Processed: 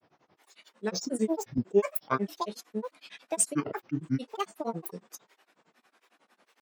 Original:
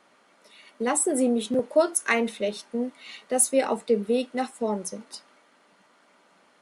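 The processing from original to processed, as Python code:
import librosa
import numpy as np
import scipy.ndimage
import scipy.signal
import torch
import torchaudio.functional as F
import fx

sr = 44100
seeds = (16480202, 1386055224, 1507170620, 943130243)

y = fx.granulator(x, sr, seeds[0], grain_ms=100.0, per_s=11.0, spray_ms=12.0, spread_st=12)
y = y * 10.0 ** (-2.5 / 20.0)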